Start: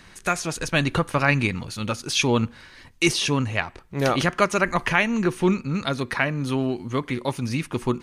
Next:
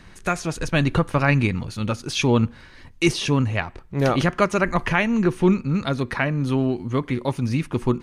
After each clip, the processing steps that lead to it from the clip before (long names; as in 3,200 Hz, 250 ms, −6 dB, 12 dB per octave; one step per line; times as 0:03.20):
spectral tilt −1.5 dB per octave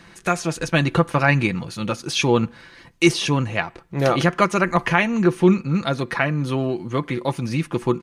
high-pass filter 170 Hz 6 dB per octave
comb filter 5.9 ms, depth 41%
level +2 dB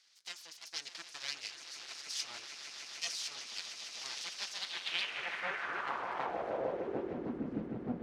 echo that builds up and dies away 152 ms, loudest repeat 8, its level −12.5 dB
full-wave rectification
band-pass filter sweep 5,100 Hz → 240 Hz, 0:04.50–0:07.43
level −7.5 dB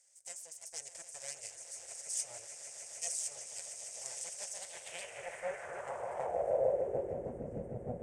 drawn EQ curve 110 Hz 0 dB, 290 Hz −20 dB, 560 Hz +3 dB, 1,200 Hz −20 dB, 2,000 Hz −14 dB, 4,100 Hz −26 dB, 8,300 Hz +11 dB, 13,000 Hz −7 dB
level +6.5 dB